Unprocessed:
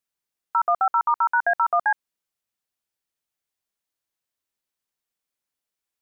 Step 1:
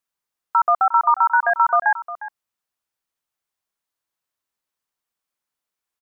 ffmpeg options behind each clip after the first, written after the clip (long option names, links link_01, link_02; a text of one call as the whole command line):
ffmpeg -i in.wav -filter_complex "[0:a]equalizer=frequency=1100:width_type=o:width=1.1:gain=5.5,asplit=2[link_01][link_02];[link_02]adelay=355.7,volume=-14dB,highshelf=frequency=4000:gain=-8[link_03];[link_01][link_03]amix=inputs=2:normalize=0" out.wav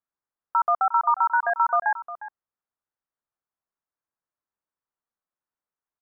ffmpeg -i in.wav -af "lowpass=frequency=1700:width=0.5412,lowpass=frequency=1700:width=1.3066,volume=-4.5dB" out.wav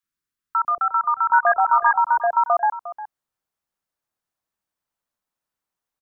ffmpeg -i in.wav -filter_complex "[0:a]acrossover=split=390|1200[link_01][link_02][link_03];[link_01]adelay=30[link_04];[link_02]adelay=770[link_05];[link_04][link_05][link_03]amix=inputs=3:normalize=0,volume=7.5dB" out.wav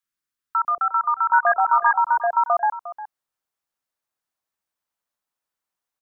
ffmpeg -i in.wav -af "lowshelf=frequency=360:gain=-6.5" out.wav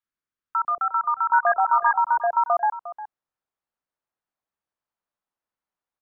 ffmpeg -i in.wav -af "lowpass=frequency=1500:poles=1" out.wav